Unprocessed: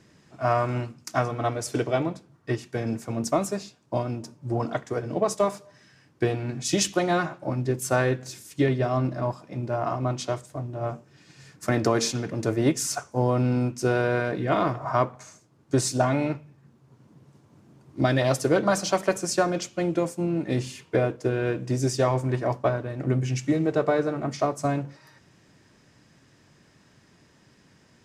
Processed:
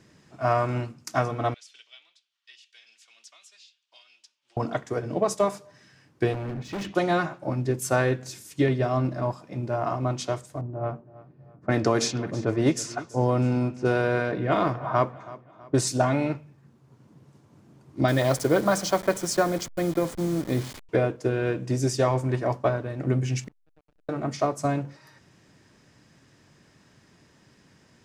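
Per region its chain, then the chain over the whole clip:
1.54–4.57 ladder band-pass 3600 Hz, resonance 55% + three-band squash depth 70%
6.33–6.95 LPF 1700 Hz + sample leveller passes 1 + hard clip -29.5 dBFS
10.61–15.87 low-pass opened by the level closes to 460 Hz, open at -18.5 dBFS + feedback echo 0.325 s, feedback 44%, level -19 dB
18.08–20.89 level-crossing sampler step -34.5 dBFS + notch 2700 Hz, Q 8.7
23.44–24.09 flipped gate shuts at -27 dBFS, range -31 dB + backlash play -40.5 dBFS
whole clip: dry

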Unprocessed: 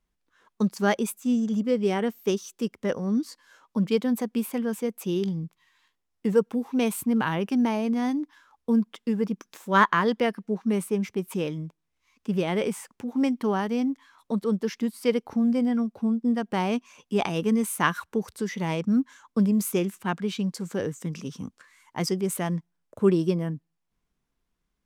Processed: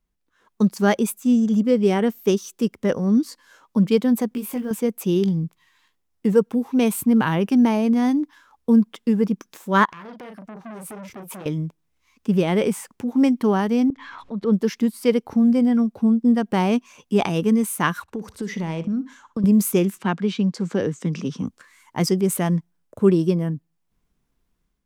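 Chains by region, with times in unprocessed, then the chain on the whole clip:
4.29–4.71 block floating point 7-bit + compressor 2:1, threshold -35 dBFS + doubler 20 ms -5.5 dB
9.85–11.46 doubler 37 ms -8 dB + compressor, threshold -35 dBFS + core saturation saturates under 3300 Hz
13.9–14.53 LPF 3200 Hz + auto swell 0.224 s + upward compressor, threshold -28 dBFS
18.02–19.44 high shelf 9200 Hz -11 dB + compressor, threshold -29 dBFS + flutter echo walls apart 10.5 m, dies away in 0.25 s
19.98–21.47 BPF 130–5400 Hz + three-band squash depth 40%
whole clip: low shelf 440 Hz +5 dB; AGC gain up to 6.5 dB; high shelf 10000 Hz +5 dB; gain -3 dB

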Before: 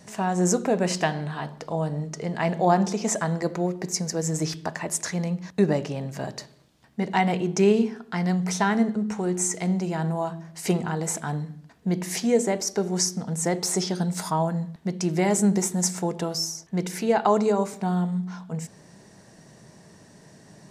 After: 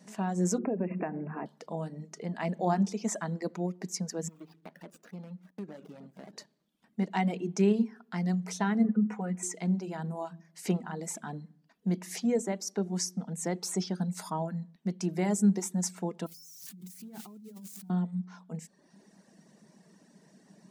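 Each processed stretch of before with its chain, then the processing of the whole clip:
0.58–1.46 bell 340 Hz +12 dB 2.2 oct + compressor 3:1, threshold -22 dBFS + brick-wall FIR low-pass 2800 Hz
4.28–6.33 median filter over 41 samples + low shelf 390 Hz -6 dB + compressor 4:1, threshold -33 dBFS
8.84–9.43 resonant high shelf 3000 Hz -12 dB, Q 1.5 + comb 4.1 ms, depth 83%
16.26–17.9 switching spikes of -14 dBFS + EQ curve 130 Hz 0 dB, 360 Hz -15 dB, 590 Hz -23 dB, 6100 Hz -15 dB + negative-ratio compressor -40 dBFS
whole clip: reverb removal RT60 0.81 s; resonant low shelf 140 Hz -11 dB, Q 3; gain -9 dB

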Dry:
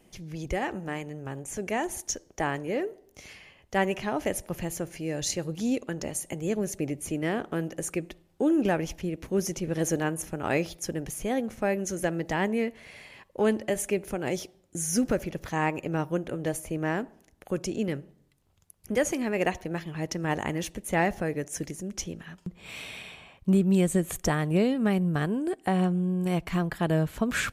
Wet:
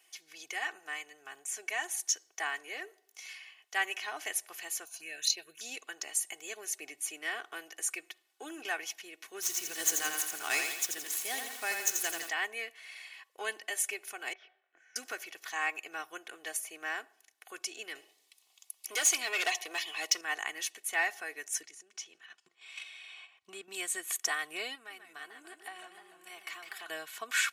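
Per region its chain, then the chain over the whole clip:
4.85–5.61 ripple EQ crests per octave 1.5, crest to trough 7 dB + transient shaper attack +6 dB, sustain -3 dB + envelope phaser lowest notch 280 Hz, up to 1700 Hz, full sweep at -22.5 dBFS
9.42–12.29 median filter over 9 samples + tone controls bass +10 dB, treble +14 dB + lo-fi delay 85 ms, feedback 55%, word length 7-bit, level -4.5 dB
14.33–14.96 compressor, threshold -40 dBFS + speaker cabinet 310–2500 Hz, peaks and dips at 330 Hz -8 dB, 690 Hz +5 dB, 980 Hz -4 dB, 1600 Hz +8 dB + doubler 23 ms -3 dB
17.95–20.21 bell 1500 Hz -14.5 dB 0.71 oct + overdrive pedal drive 19 dB, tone 7300 Hz, clips at -14 dBFS
21.61–23.72 LPF 7700 Hz + low shelf 180 Hz +5.5 dB + level quantiser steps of 10 dB
24.75–26.9 compressor 2.5:1, threshold -35 dBFS + warbling echo 0.148 s, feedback 64%, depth 216 cents, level -8.5 dB
whole clip: HPF 1500 Hz 12 dB/oct; comb 2.7 ms, depth 73%

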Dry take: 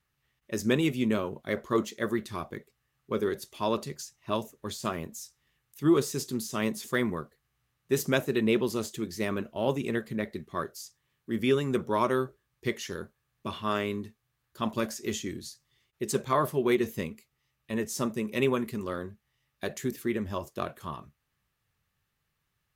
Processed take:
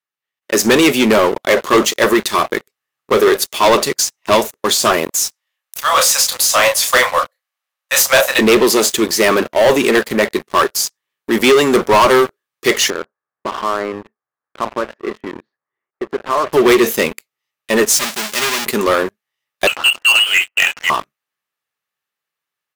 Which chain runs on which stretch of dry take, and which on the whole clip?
5.1–8.39 Chebyshev high-pass 500 Hz, order 10 + doubler 31 ms -6.5 dB
12.9–16.53 LPF 1600 Hz 24 dB/oct + low shelf 110 Hz -11 dB + compressor 3:1, threshold -41 dBFS
17.95–18.66 half-waves squared off + passive tone stack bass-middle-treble 5-5-5 + comb 4.9 ms, depth 31%
19.67–20.9 half-wave gain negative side -3 dB + HPF 220 Hz 6 dB/oct + inverted band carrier 3100 Hz
whole clip: AGC gain up to 8 dB; HPF 430 Hz 12 dB/oct; sample leveller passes 5

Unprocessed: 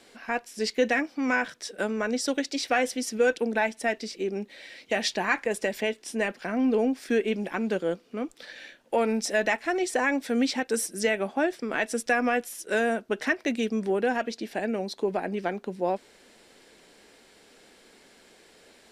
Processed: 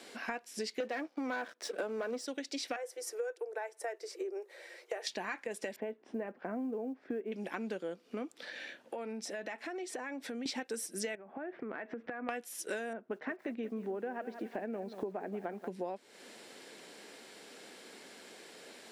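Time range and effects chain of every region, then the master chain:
0.8–2.25 HPF 390 Hz + tilt shelf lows +7.5 dB, about 1500 Hz + sample leveller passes 2
2.76–5.07 rippled Chebyshev high-pass 340 Hz, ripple 3 dB + bell 3200 Hz -14 dB 1.7 oct
5.76–7.32 LPF 1100 Hz + short-mantissa float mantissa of 6-bit
8.32–10.46 high shelf 4000 Hz -6.5 dB + compressor 3:1, threshold -44 dBFS
11.15–12.29 LPF 2000 Hz 24 dB/oct + compressor 12:1, threshold -38 dBFS
12.93–15.68 LPF 1600 Hz + lo-fi delay 0.181 s, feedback 35%, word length 8-bit, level -15 dB
whole clip: HPF 180 Hz 12 dB/oct; compressor 8:1, threshold -39 dBFS; gain +3 dB

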